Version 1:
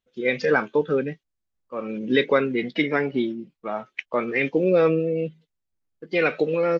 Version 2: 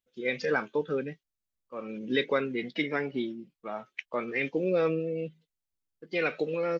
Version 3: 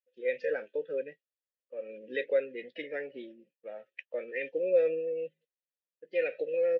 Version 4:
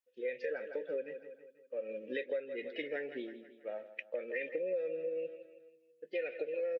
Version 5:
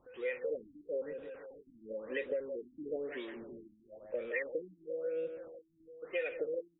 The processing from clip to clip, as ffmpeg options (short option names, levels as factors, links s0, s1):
-af "highshelf=f=3800:g=6.5,volume=0.398"
-filter_complex "[0:a]asplit=3[s0][s1][s2];[s0]bandpass=f=530:t=q:w=8,volume=1[s3];[s1]bandpass=f=1840:t=q:w=8,volume=0.501[s4];[s2]bandpass=f=2480:t=q:w=8,volume=0.355[s5];[s3][s4][s5]amix=inputs=3:normalize=0,volume=1.68"
-af "aecho=1:1:163|326|489|652|815:0.188|0.0942|0.0471|0.0235|0.0118,flanger=delay=2.7:depth=1.1:regen=-69:speed=0.33:shape=sinusoidal,acompressor=threshold=0.01:ratio=6,volume=2"
-filter_complex "[0:a]aeval=exprs='val(0)+0.5*0.00447*sgn(val(0))':c=same,acrossover=split=520[s0][s1];[s0]aeval=exprs='val(0)*(1-0.7/2+0.7/2*cos(2*PI*1.7*n/s))':c=same[s2];[s1]aeval=exprs='val(0)*(1-0.7/2-0.7/2*cos(2*PI*1.7*n/s))':c=same[s3];[s2][s3]amix=inputs=2:normalize=0,afftfilt=real='re*lt(b*sr/1024,310*pow(3900/310,0.5+0.5*sin(2*PI*1*pts/sr)))':imag='im*lt(b*sr/1024,310*pow(3900/310,0.5+0.5*sin(2*PI*1*pts/sr)))':win_size=1024:overlap=0.75,volume=1.5"